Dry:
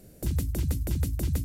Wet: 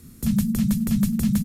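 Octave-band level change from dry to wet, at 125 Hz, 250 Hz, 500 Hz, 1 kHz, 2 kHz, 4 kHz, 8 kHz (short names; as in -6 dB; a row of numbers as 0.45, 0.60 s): +2.5 dB, +16.5 dB, -4.0 dB, n/a, +5.5 dB, +6.0 dB, +6.5 dB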